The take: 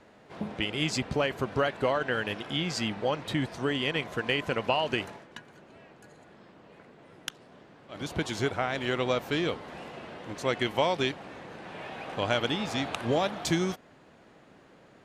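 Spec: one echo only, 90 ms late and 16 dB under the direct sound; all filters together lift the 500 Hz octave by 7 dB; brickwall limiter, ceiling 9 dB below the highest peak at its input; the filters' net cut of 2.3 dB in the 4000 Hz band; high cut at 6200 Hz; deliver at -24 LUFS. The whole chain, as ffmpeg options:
-af "lowpass=6.2k,equalizer=f=500:t=o:g=8.5,equalizer=f=4k:t=o:g=-3,alimiter=limit=-16dB:level=0:latency=1,aecho=1:1:90:0.158,volume=4.5dB"

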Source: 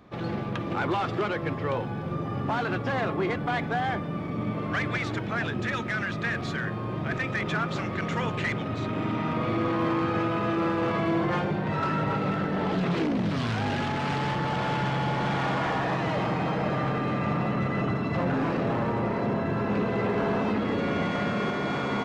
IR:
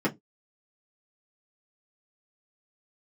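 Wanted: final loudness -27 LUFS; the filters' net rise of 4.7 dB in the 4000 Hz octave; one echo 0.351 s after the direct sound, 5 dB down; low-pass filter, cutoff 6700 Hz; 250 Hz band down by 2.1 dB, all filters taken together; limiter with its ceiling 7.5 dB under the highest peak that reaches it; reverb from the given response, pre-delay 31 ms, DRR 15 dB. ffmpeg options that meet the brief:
-filter_complex "[0:a]lowpass=6.7k,equalizer=f=250:t=o:g=-3,equalizer=f=4k:t=o:g=6.5,alimiter=limit=-23.5dB:level=0:latency=1,aecho=1:1:351:0.562,asplit=2[a][b];[1:a]atrim=start_sample=2205,adelay=31[c];[b][c]afir=irnorm=-1:irlink=0,volume=-25.5dB[d];[a][d]amix=inputs=2:normalize=0,volume=3dB"

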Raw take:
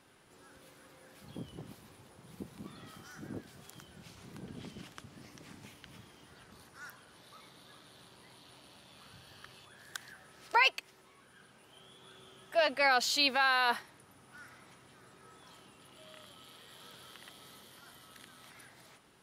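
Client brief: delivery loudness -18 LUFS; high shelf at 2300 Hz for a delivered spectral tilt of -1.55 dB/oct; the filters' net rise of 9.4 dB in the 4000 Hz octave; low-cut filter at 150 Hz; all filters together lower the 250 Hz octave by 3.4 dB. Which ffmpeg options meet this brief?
-af "highpass=150,equalizer=f=250:t=o:g=-3.5,highshelf=f=2.3k:g=9,equalizer=f=4k:t=o:g=3.5,volume=5.5dB"

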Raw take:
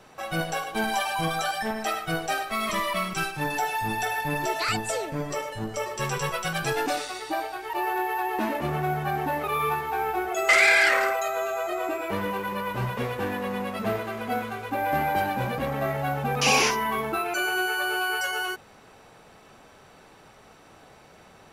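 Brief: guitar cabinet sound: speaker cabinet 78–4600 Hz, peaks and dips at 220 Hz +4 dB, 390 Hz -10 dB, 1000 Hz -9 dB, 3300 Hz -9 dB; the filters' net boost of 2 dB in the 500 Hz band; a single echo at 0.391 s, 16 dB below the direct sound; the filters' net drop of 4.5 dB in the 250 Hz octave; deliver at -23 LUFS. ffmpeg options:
-af "highpass=78,equalizer=f=220:t=q:w=4:g=4,equalizer=f=390:t=q:w=4:g=-10,equalizer=f=1k:t=q:w=4:g=-9,equalizer=f=3.3k:t=q:w=4:g=-9,lowpass=f=4.6k:w=0.5412,lowpass=f=4.6k:w=1.3066,equalizer=f=250:t=o:g=-9,equalizer=f=500:t=o:g=8,aecho=1:1:391:0.158,volume=4dB"

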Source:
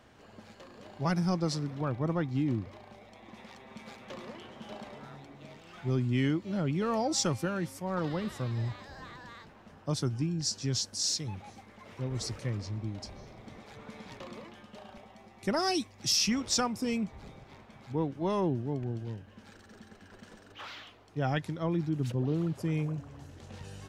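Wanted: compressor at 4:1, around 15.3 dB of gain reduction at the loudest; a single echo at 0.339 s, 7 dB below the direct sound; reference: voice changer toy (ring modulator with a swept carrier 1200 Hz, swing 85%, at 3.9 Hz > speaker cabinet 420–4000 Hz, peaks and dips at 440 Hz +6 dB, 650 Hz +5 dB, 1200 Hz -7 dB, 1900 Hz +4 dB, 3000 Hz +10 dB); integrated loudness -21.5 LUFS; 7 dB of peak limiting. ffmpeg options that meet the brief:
-af "acompressor=threshold=-44dB:ratio=4,alimiter=level_in=13dB:limit=-24dB:level=0:latency=1,volume=-13dB,aecho=1:1:339:0.447,aeval=exprs='val(0)*sin(2*PI*1200*n/s+1200*0.85/3.9*sin(2*PI*3.9*n/s))':c=same,highpass=420,equalizer=f=440:t=q:w=4:g=6,equalizer=f=650:t=q:w=4:g=5,equalizer=f=1.2k:t=q:w=4:g=-7,equalizer=f=1.9k:t=q:w=4:g=4,equalizer=f=3k:t=q:w=4:g=10,lowpass=f=4k:w=0.5412,lowpass=f=4k:w=1.3066,volume=25dB"

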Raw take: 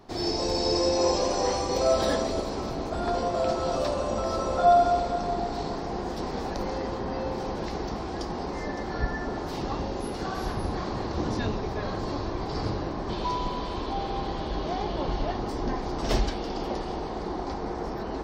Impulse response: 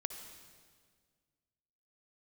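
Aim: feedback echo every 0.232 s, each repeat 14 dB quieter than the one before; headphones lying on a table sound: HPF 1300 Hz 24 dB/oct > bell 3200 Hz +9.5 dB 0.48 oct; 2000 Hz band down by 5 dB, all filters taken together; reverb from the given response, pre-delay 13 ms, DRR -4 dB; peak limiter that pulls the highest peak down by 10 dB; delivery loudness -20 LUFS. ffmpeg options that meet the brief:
-filter_complex "[0:a]equalizer=f=2k:t=o:g=-7.5,alimiter=limit=-20.5dB:level=0:latency=1,aecho=1:1:232|464:0.2|0.0399,asplit=2[a][b];[1:a]atrim=start_sample=2205,adelay=13[c];[b][c]afir=irnorm=-1:irlink=0,volume=4.5dB[d];[a][d]amix=inputs=2:normalize=0,highpass=f=1.3k:w=0.5412,highpass=f=1.3k:w=1.3066,equalizer=f=3.2k:t=o:w=0.48:g=9.5,volume=14dB"

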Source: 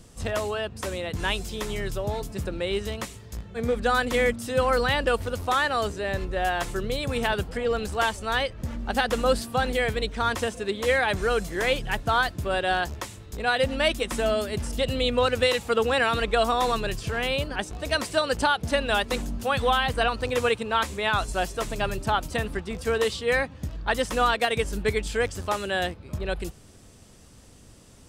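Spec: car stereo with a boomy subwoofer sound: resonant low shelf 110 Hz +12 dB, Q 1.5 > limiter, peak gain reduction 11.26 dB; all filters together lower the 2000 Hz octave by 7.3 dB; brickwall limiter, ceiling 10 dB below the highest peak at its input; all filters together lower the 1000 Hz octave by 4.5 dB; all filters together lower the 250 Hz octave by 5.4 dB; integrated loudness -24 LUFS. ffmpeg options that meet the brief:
-af "equalizer=f=250:t=o:g=-4,equalizer=f=1k:t=o:g=-3.5,equalizer=f=2k:t=o:g=-8.5,alimiter=limit=-23dB:level=0:latency=1,lowshelf=f=110:t=q:w=1.5:g=12,volume=7.5dB,alimiter=limit=-14.5dB:level=0:latency=1"

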